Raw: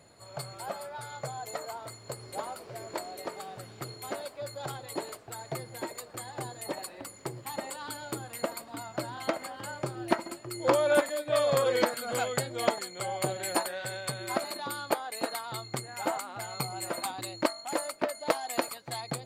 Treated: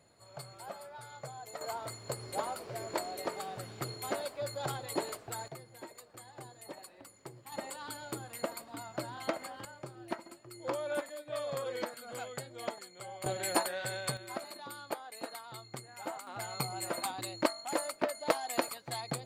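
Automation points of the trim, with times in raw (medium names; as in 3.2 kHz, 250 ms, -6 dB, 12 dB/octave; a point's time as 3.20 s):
-7.5 dB
from 1.61 s +1 dB
from 5.48 s -11 dB
from 7.52 s -4 dB
from 9.65 s -11.5 dB
from 13.26 s -1 dB
from 14.17 s -9.5 dB
from 16.27 s -2 dB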